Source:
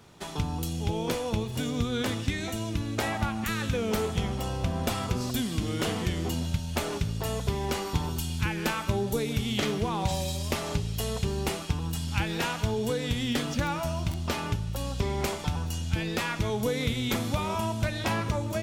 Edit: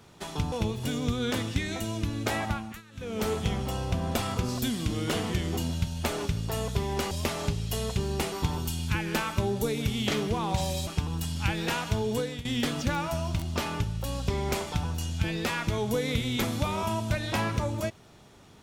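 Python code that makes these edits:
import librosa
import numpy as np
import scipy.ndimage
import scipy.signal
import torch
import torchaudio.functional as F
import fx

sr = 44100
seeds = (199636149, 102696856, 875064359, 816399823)

y = fx.edit(x, sr, fx.cut(start_s=0.52, length_s=0.72),
    fx.fade_down_up(start_s=3.16, length_s=0.86, db=-22.0, fade_s=0.38),
    fx.move(start_s=10.38, length_s=1.21, to_s=7.83),
    fx.fade_out_to(start_s=12.9, length_s=0.27, floor_db=-15.5), tone=tone)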